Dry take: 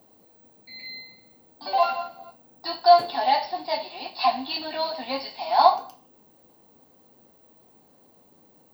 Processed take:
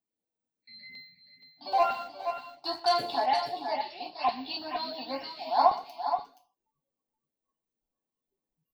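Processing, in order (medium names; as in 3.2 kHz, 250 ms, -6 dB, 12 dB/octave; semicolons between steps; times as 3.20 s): spectral noise reduction 29 dB; LFO notch saw up 2.1 Hz 480–5000 Hz; 1.72–3.26 s: waveshaping leveller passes 1; on a send: multi-tap echo 122/472/479 ms -19.5/-10.5/-11.5 dB; on the sum: trim -5.5 dB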